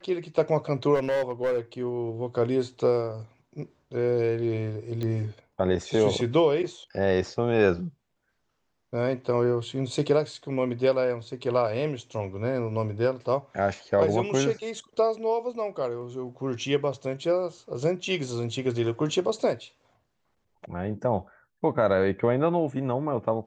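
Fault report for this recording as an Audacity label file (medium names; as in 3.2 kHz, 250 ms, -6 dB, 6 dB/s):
0.940000	1.590000	clipped -21.5 dBFS
5.030000	5.030000	pop -20 dBFS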